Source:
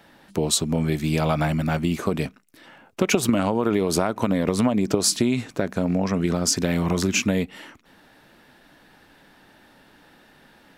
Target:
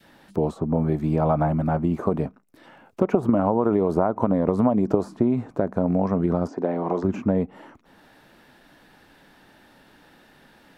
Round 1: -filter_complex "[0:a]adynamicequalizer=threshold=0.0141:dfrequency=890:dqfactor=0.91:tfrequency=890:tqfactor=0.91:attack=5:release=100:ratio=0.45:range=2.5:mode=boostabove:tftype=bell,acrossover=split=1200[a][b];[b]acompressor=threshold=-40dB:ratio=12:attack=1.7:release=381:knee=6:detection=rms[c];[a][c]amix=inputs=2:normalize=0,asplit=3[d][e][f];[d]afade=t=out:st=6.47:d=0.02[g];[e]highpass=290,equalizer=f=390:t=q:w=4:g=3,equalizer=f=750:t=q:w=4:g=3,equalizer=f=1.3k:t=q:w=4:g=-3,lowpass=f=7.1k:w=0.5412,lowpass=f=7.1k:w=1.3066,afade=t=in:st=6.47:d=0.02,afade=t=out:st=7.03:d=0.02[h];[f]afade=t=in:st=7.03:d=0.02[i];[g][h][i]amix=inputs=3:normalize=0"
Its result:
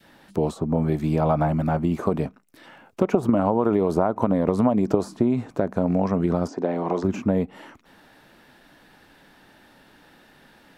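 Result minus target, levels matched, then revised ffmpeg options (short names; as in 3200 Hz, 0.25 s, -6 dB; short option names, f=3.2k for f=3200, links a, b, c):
compressor: peak gain reduction -8 dB
-filter_complex "[0:a]adynamicequalizer=threshold=0.0141:dfrequency=890:dqfactor=0.91:tfrequency=890:tqfactor=0.91:attack=5:release=100:ratio=0.45:range=2.5:mode=boostabove:tftype=bell,acrossover=split=1200[a][b];[b]acompressor=threshold=-49dB:ratio=12:attack=1.7:release=381:knee=6:detection=rms[c];[a][c]amix=inputs=2:normalize=0,asplit=3[d][e][f];[d]afade=t=out:st=6.47:d=0.02[g];[e]highpass=290,equalizer=f=390:t=q:w=4:g=3,equalizer=f=750:t=q:w=4:g=3,equalizer=f=1.3k:t=q:w=4:g=-3,lowpass=f=7.1k:w=0.5412,lowpass=f=7.1k:w=1.3066,afade=t=in:st=6.47:d=0.02,afade=t=out:st=7.03:d=0.02[h];[f]afade=t=in:st=7.03:d=0.02[i];[g][h][i]amix=inputs=3:normalize=0"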